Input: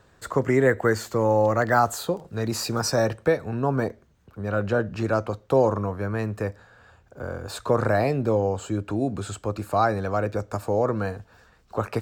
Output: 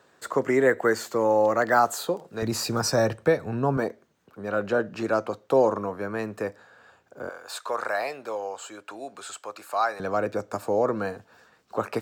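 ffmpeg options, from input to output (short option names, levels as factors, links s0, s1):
-af "asetnsamples=n=441:p=0,asendcmd='2.42 highpass f 94;3.77 highpass f 230;7.29 highpass f 820;10 highpass f 200',highpass=250"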